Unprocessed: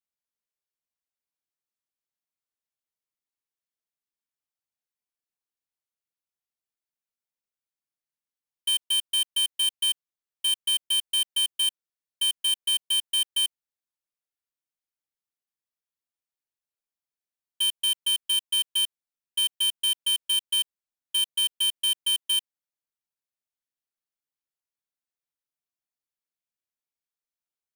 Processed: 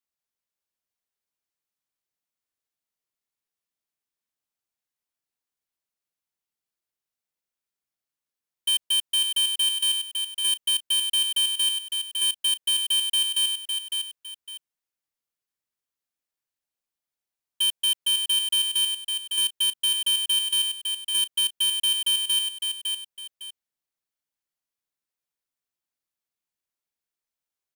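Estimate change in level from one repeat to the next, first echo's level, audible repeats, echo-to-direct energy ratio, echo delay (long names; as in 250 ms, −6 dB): −11.0 dB, −5.5 dB, 2, −5.0 dB, 557 ms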